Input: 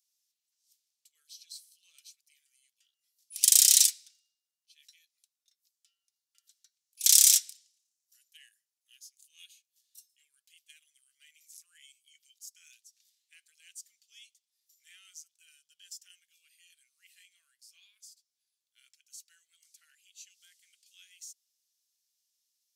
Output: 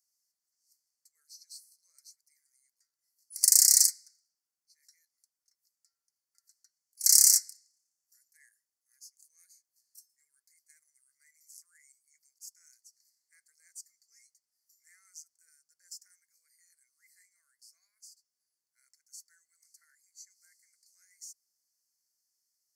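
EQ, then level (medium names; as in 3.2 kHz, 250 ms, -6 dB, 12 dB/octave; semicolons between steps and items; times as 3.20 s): Chebyshev band-stop 2.1–4.4 kHz, order 4; 0.0 dB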